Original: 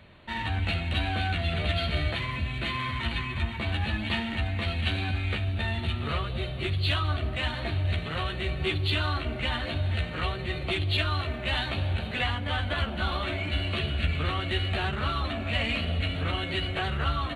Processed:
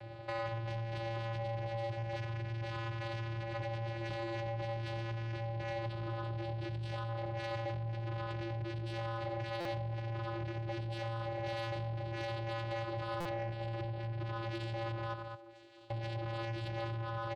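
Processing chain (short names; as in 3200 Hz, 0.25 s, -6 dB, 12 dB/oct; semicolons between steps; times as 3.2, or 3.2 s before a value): tracing distortion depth 0.054 ms; vocal rider within 4 dB 0.5 s; comb 4.5 ms, depth 78%; limiter -21 dBFS, peak gain reduction 9 dB; 15.13–15.9 metallic resonator 390 Hz, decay 0.67 s, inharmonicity 0.03; tapped delay 87/210 ms -10.5/-15 dB; vocoder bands 8, square 114 Hz; 13.29–14.2 high shelf 2100 Hz -9.5 dB; compressor 4:1, threshold -38 dBFS, peak gain reduction 10.5 dB; EQ curve 300 Hz 0 dB, 650 Hz +9 dB, 1100 Hz +1 dB; soft clip -35.5 dBFS, distortion -16 dB; stuck buffer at 9.6/13.2, samples 256, times 8; gain +2.5 dB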